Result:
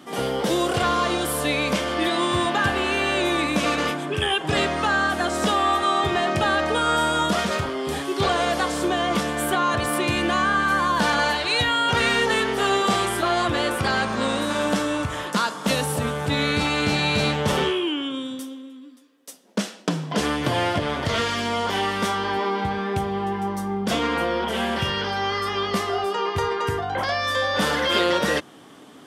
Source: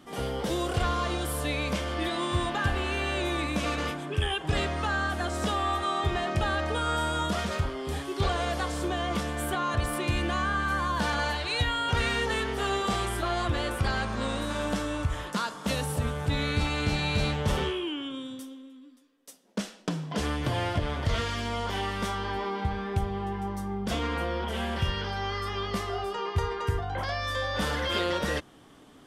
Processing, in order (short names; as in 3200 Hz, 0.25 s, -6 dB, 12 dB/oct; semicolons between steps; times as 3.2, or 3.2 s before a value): HPF 160 Hz 12 dB/oct; gain +8 dB